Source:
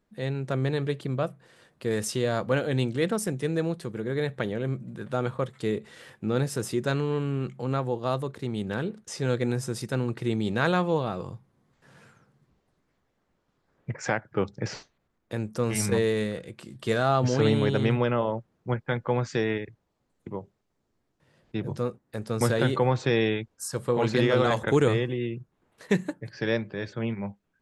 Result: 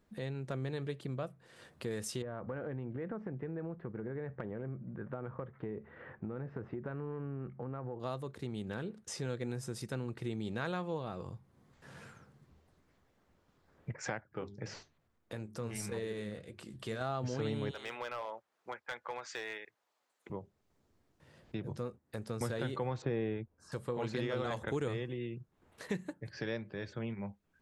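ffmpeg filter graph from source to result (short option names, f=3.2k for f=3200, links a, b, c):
-filter_complex "[0:a]asettb=1/sr,asplit=3[a][b][c];[a]atrim=end=2.224[d];[b]atrim=start=2.22:end=8,asetpts=PTS-STARTPTS,afade=t=in:d=0.004:c=qsin,afade=t=out:st=5.776:d=0.004:c=qsin,lowpass=f=1.8k:w=0.5412,lowpass=f=1.8k:w=1.3066,acompressor=threshold=-27dB:ratio=6:attack=3.2:release=140:knee=1:detection=peak[e];[c]atrim=start=7.996[f];[d][e]acrossfade=d=0.004:c1=hsin:c2=qsin[g];[g][f]acrossfade=d=0.004:c1=qsin:c2=hsin,asettb=1/sr,asplit=3[h][i][j];[h]atrim=end=14.244[k];[i]atrim=start=14.24:end=17.01,asetpts=PTS-STARTPTS,afade=t=in:d=0.004:c=qsin,afade=t=out:st=2.766:d=0.004:c=qsin,bandreject=f=50:t=h:w=6,bandreject=f=100:t=h:w=6,bandreject=f=150:t=h:w=6,bandreject=f=200:t=h:w=6,bandreject=f=250:t=h:w=6,bandreject=f=300:t=h:w=6,bandreject=f=350:t=h:w=6,bandreject=f=400:t=h:w=6,flanger=delay=1.3:depth=9:regen=69:speed=1.7:shape=triangular[l];[j]atrim=start=17.006[m];[k][l]acrossfade=d=0.004:c1=hsin:c2=qsin[n];[n][m]acrossfade=d=0.004:c1=qsin:c2=hsin,asettb=1/sr,asplit=3[o][p][q];[o]atrim=end=17.714[r];[p]atrim=start=17.71:end=20.3,asetpts=PTS-STARTPTS,afade=t=in:d=0.004:c=qsin,afade=t=out:st=2.586:d=0.004:c=qsin,highpass=790,asoftclip=type=hard:threshold=-25.5dB[s];[q]atrim=start=20.296[t];[r][s]acrossfade=d=0.004:c1=hsin:c2=qsin[u];[u][t]acrossfade=d=0.004:c1=qsin:c2=hsin,asettb=1/sr,asplit=3[v][w][x];[v]atrim=end=23.024[y];[w]atrim=start=23.02:end=23.72,asetpts=PTS-STARTPTS,afade=t=in:d=0.004:c=qsin,afade=t=out:st=0.696:d=0.004:c=qsin,lowpass=2.7k,tiltshelf=f=1.3k:g=5[z];[x]atrim=start=23.716[aa];[y][z]acrossfade=d=0.004:c1=hsin:c2=qsin[ab];[ab][aa]acrossfade=d=0.004:c1=qsin:c2=hsin,equalizer=f=80:t=o:w=0.23:g=9.5,acompressor=threshold=-48dB:ratio=2,volume=2dB"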